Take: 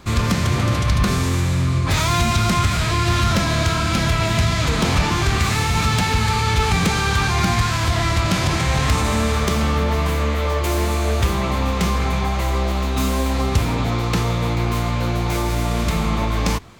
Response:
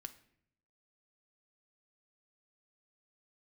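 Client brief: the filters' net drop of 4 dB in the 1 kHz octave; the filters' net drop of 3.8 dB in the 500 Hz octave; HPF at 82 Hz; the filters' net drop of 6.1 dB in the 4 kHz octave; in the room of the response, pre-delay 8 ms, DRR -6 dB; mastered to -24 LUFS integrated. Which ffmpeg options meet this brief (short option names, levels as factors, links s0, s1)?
-filter_complex "[0:a]highpass=82,equalizer=f=500:t=o:g=-4,equalizer=f=1000:t=o:g=-3.5,equalizer=f=4000:t=o:g=-7.5,asplit=2[s0][s1];[1:a]atrim=start_sample=2205,adelay=8[s2];[s1][s2]afir=irnorm=-1:irlink=0,volume=3.55[s3];[s0][s3]amix=inputs=2:normalize=0,volume=0.376"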